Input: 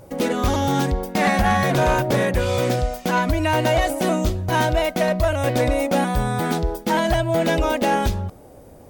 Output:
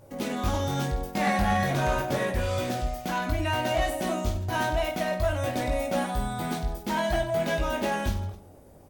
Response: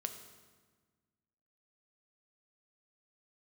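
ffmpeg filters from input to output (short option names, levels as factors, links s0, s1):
-af "bandreject=f=490:w=12,aecho=1:1:20|50|95|162.5|263.8:0.631|0.398|0.251|0.158|0.1,volume=0.355"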